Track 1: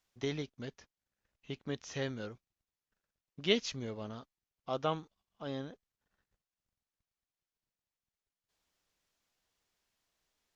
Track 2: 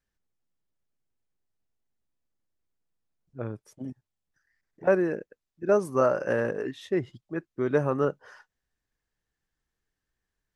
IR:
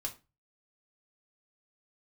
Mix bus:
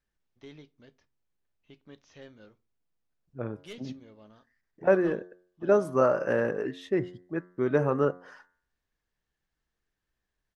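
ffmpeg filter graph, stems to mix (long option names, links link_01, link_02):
-filter_complex "[0:a]lowpass=4900,asoftclip=type=tanh:threshold=-25dB,adelay=200,volume=-13.5dB,asplit=2[link_01][link_02];[link_02]volume=-7dB[link_03];[1:a]highshelf=frequency=6200:gain=-8.5,bandreject=frequency=89.82:width_type=h:width=4,bandreject=frequency=179.64:width_type=h:width=4,bandreject=frequency=269.46:width_type=h:width=4,bandreject=frequency=359.28:width_type=h:width=4,bandreject=frequency=449.1:width_type=h:width=4,bandreject=frequency=538.92:width_type=h:width=4,bandreject=frequency=628.74:width_type=h:width=4,bandreject=frequency=718.56:width_type=h:width=4,bandreject=frequency=808.38:width_type=h:width=4,bandreject=frequency=898.2:width_type=h:width=4,bandreject=frequency=988.02:width_type=h:width=4,bandreject=frequency=1077.84:width_type=h:width=4,bandreject=frequency=1167.66:width_type=h:width=4,bandreject=frequency=1257.48:width_type=h:width=4,bandreject=frequency=1347.3:width_type=h:width=4,bandreject=frequency=1437.12:width_type=h:width=4,bandreject=frequency=1526.94:width_type=h:width=4,bandreject=frequency=1616.76:width_type=h:width=4,bandreject=frequency=1706.58:width_type=h:width=4,bandreject=frequency=1796.4:width_type=h:width=4,bandreject=frequency=1886.22:width_type=h:width=4,bandreject=frequency=1976.04:width_type=h:width=4,bandreject=frequency=2065.86:width_type=h:width=4,volume=0.5dB[link_04];[2:a]atrim=start_sample=2205[link_05];[link_03][link_05]afir=irnorm=-1:irlink=0[link_06];[link_01][link_04][link_06]amix=inputs=3:normalize=0,equalizer=frequency=110:width_type=o:width=0.21:gain=-4"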